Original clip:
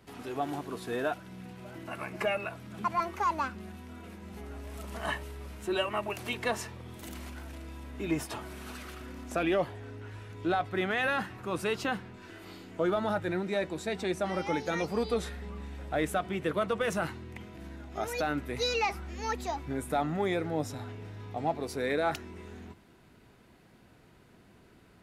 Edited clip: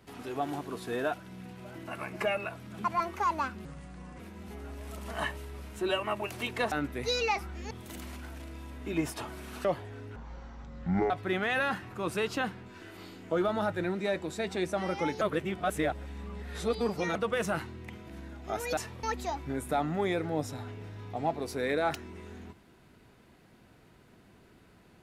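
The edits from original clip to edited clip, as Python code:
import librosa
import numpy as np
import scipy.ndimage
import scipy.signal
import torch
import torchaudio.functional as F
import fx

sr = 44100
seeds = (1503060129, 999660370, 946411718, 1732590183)

y = fx.edit(x, sr, fx.speed_span(start_s=3.65, length_s=0.41, speed=0.75),
    fx.swap(start_s=6.58, length_s=0.26, other_s=18.25, other_length_s=0.99),
    fx.cut(start_s=8.78, length_s=0.77),
    fx.speed_span(start_s=10.06, length_s=0.52, speed=0.55),
    fx.reverse_span(start_s=14.69, length_s=1.94), tone=tone)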